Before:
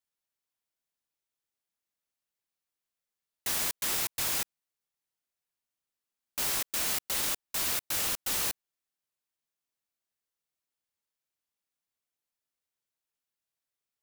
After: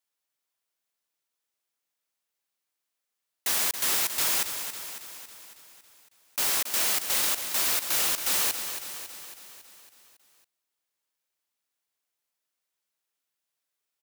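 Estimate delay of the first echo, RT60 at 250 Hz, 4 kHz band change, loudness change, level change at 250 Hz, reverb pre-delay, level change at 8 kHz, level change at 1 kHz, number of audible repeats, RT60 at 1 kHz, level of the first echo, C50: 0.276 s, none, +5.5 dB, +4.5 dB, +1.0 dB, none, +5.0 dB, +5.0 dB, 6, none, -9.0 dB, none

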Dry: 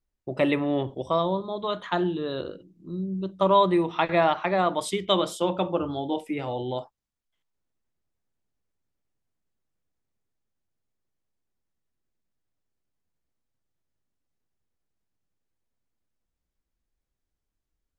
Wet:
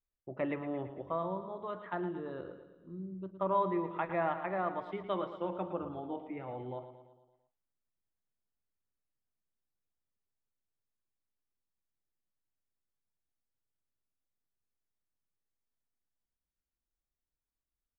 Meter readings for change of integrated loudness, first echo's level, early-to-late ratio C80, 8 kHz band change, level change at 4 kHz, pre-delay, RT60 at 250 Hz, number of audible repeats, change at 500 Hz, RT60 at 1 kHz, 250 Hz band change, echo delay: -11.0 dB, -11.0 dB, none, under -30 dB, -24.5 dB, none, none, 5, -11.0 dB, none, -11.5 dB, 0.113 s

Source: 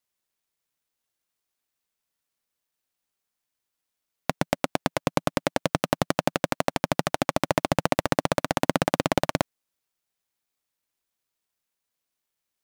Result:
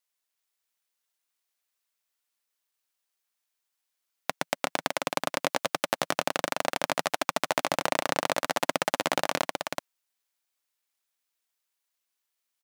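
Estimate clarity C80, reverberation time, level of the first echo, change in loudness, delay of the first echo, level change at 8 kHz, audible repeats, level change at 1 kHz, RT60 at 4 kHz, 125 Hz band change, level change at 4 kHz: none, none, -4.5 dB, -3.0 dB, 0.375 s, +1.0 dB, 1, -1.5 dB, none, -14.5 dB, +1.0 dB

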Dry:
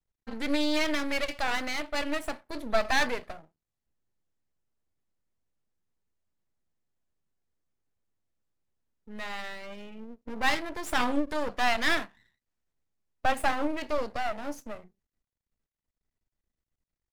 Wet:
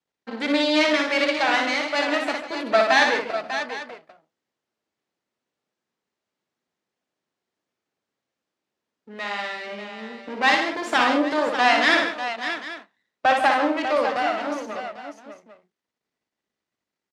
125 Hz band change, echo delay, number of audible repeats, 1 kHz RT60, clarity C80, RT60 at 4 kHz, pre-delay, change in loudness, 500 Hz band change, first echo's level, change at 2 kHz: n/a, 59 ms, 4, none, none, none, none, +8.5 dB, +9.5 dB, -4.5 dB, +9.5 dB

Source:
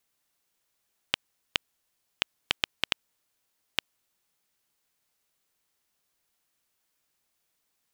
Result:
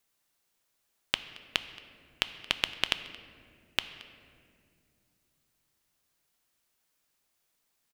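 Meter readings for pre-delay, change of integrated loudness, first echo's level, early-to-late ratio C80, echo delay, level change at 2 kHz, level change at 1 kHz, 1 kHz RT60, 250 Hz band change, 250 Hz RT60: 3 ms, +0.5 dB, -22.0 dB, 13.0 dB, 0.224 s, +0.5 dB, +0.5 dB, 1.8 s, +0.5 dB, 3.6 s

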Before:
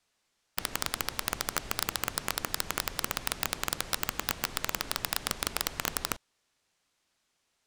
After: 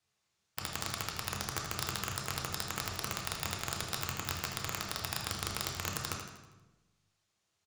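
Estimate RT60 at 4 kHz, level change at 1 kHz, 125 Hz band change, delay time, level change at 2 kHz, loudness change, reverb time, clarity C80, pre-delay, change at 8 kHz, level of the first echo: 0.85 s, -3.5 dB, +4.0 dB, 80 ms, -4.5 dB, -4.0 dB, 1.1 s, 5.5 dB, 3 ms, -4.5 dB, -9.5 dB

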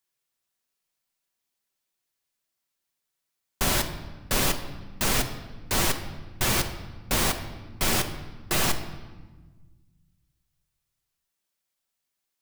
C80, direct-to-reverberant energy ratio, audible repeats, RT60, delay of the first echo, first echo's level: 12.0 dB, 6.0 dB, none, 1.3 s, none, none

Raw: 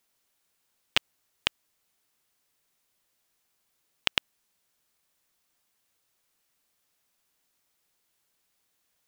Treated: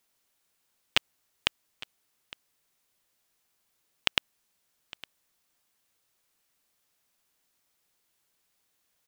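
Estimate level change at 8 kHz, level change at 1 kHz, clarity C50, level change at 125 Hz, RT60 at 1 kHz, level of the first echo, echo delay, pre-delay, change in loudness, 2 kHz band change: 0.0 dB, 0.0 dB, none, 0.0 dB, none, -19.5 dB, 0.859 s, none, 0.0 dB, 0.0 dB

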